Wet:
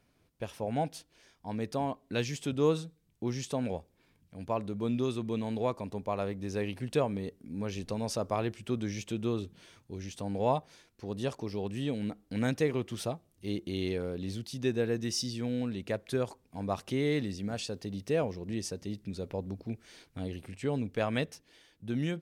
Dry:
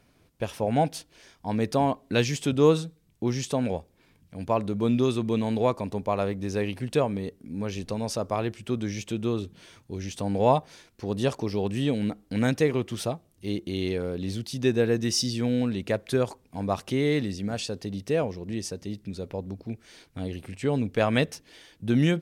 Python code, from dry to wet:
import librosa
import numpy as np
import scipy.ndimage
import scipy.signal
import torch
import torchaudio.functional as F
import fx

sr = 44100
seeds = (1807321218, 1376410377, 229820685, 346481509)

y = fx.rider(x, sr, range_db=4, speed_s=2.0)
y = fx.quant_dither(y, sr, seeds[0], bits=12, dither='none', at=(17.26, 18.37))
y = y * 10.0 ** (-6.5 / 20.0)